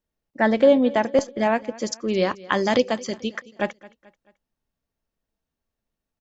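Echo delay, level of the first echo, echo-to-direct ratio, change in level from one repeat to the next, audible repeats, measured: 218 ms, -21.0 dB, -20.0 dB, -7.0 dB, 3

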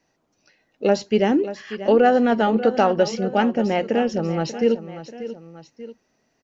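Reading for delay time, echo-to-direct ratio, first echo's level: 588 ms, -12.0 dB, -13.0 dB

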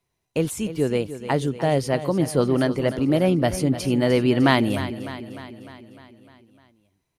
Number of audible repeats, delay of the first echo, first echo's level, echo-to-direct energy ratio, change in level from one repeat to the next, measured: 5, 302 ms, -12.5 dB, -10.5 dB, -4.5 dB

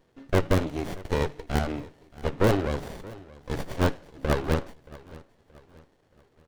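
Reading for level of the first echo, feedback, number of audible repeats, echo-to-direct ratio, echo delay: -20.5 dB, 41%, 2, -19.5 dB, 626 ms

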